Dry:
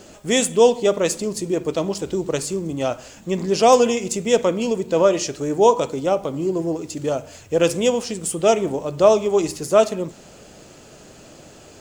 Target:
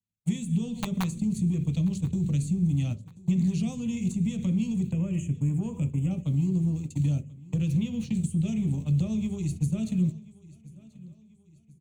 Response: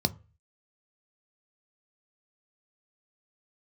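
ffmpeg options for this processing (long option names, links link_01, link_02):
-filter_complex "[0:a]firequalizer=gain_entry='entry(260,0);entry(380,-10);entry(960,-24);entry(2200,-7);entry(5500,-9);entry(7900,0);entry(12000,-6)':delay=0.05:min_phase=1,agate=range=-55dB:threshold=-32dB:ratio=16:detection=peak,asplit=2[link_01][link_02];[link_02]asoftclip=type=tanh:threshold=-24dB,volume=-9dB[link_03];[link_01][link_03]amix=inputs=2:normalize=0,alimiter=limit=-18.5dB:level=0:latency=1:release=119,acompressor=threshold=-27dB:ratio=6,asettb=1/sr,asplit=3[link_04][link_05][link_06];[link_04]atrim=end=7.674[link_07];[link_05]atrim=start=7.67:end=8.17,asetpts=PTS-STARTPTS,afade=type=in:duration=0.004:curve=qsin,afade=type=out:start_time=0.496:duration=0.004:curve=qsin,equalizer=frequency=8400:width_type=o:width=0.64:gain=-14.5[link_08];[link_06]atrim=start=8.166[link_09];[link_07][link_08]acrossfade=duration=0.004:curve1=hsin:curve2=qsin[link_10];[link_10][link_09]acrossfade=duration=0.004:curve1=qsin:curve2=hsin,acrossover=split=200|450[link_11][link_12][link_13];[link_11]acompressor=threshold=-35dB:ratio=4[link_14];[link_12]acompressor=threshold=-41dB:ratio=4[link_15];[link_13]acompressor=threshold=-49dB:ratio=4[link_16];[link_14][link_15][link_16]amix=inputs=3:normalize=0,asettb=1/sr,asplit=3[link_17][link_18][link_19];[link_17]atrim=end=0.664[link_20];[link_18]atrim=start=0.66:end=1.19,asetpts=PTS-STARTPTS,afade=type=in:duration=0.004:curve=qsin,afade=type=out:start_time=0.526:duration=0.004:curve=qsin,aeval=exprs='(mod(23.7*val(0)+1,2)-1)/23.7':channel_layout=same[link_21];[link_19]atrim=start=1.186[link_22];[link_20][link_21]acrossfade=duration=0.004:curve1=hsin:curve2=qsin[link_23];[link_23][link_22]acrossfade=duration=0.004:curve1=qsin:curve2=hsin,asettb=1/sr,asplit=3[link_24][link_25][link_26];[link_24]atrim=end=4.924[link_27];[link_25]atrim=start=4.92:end=6.11,asetpts=PTS-STARTPTS,afade=type=in:duration=0.004:curve=qsin,afade=type=out:start_time=1.186:duration=0.004:curve=qsin,asuperstop=centerf=4600:order=8:qfactor=1.2[link_28];[link_26]atrim=start=6.106[link_29];[link_27][link_28]acrossfade=duration=0.004:curve1=hsin:curve2=qsin[link_30];[link_30][link_29]acrossfade=duration=0.004:curve1=qsin:curve2=hsin,aecho=1:1:1036|2072|3108:0.0841|0.037|0.0163,asplit=2[link_31][link_32];[1:a]atrim=start_sample=2205[link_33];[link_32][link_33]afir=irnorm=-1:irlink=0,volume=-13dB[link_34];[link_31][link_34]amix=inputs=2:normalize=0,volume=4.5dB"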